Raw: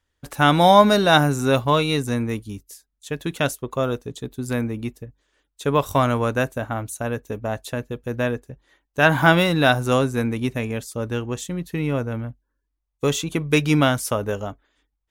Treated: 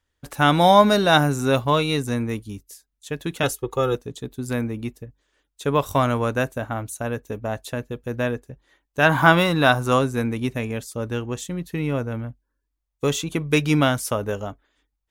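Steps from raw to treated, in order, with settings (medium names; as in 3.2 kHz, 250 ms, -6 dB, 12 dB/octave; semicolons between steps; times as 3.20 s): 3.43–3.95 s: comb 2.4 ms, depth 94%; 9.09–9.99 s: peaking EQ 1.1 kHz +6 dB 0.58 oct; trim -1 dB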